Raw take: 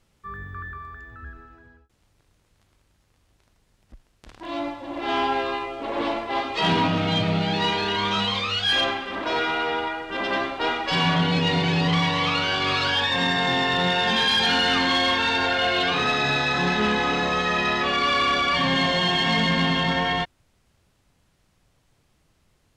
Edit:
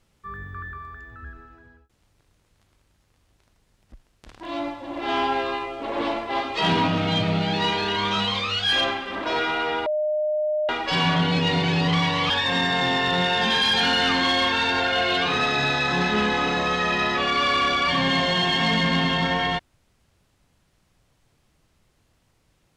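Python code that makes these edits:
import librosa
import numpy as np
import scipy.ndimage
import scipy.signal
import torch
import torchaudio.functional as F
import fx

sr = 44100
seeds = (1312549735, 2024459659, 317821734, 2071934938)

y = fx.edit(x, sr, fx.bleep(start_s=9.86, length_s=0.83, hz=609.0, db=-20.5),
    fx.cut(start_s=12.3, length_s=0.66), tone=tone)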